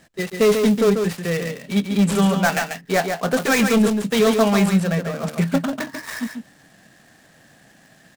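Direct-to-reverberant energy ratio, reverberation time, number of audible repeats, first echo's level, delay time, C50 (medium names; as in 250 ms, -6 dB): no reverb, no reverb, 1, -6.0 dB, 141 ms, no reverb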